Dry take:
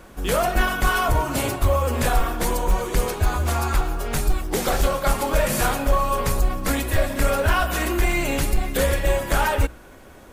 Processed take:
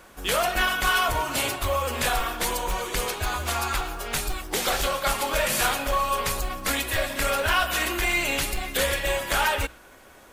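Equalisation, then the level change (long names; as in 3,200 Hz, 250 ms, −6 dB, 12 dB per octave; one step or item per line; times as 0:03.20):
dynamic equaliser 3,200 Hz, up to +5 dB, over −42 dBFS, Q 1.1
low-shelf EQ 480 Hz −11 dB
0.0 dB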